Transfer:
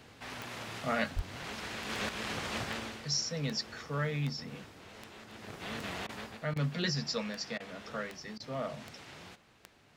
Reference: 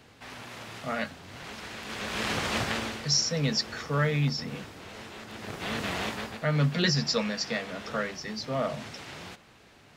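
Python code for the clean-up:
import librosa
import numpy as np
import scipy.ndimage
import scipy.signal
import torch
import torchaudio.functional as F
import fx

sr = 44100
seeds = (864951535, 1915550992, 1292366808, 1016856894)

y = fx.fix_declick_ar(x, sr, threshold=10.0)
y = fx.highpass(y, sr, hz=140.0, slope=24, at=(1.15, 1.27), fade=0.02)
y = fx.fix_interpolate(y, sr, at_s=(6.07, 6.54, 7.58, 8.38), length_ms=20.0)
y = fx.fix_level(y, sr, at_s=2.09, step_db=7.5)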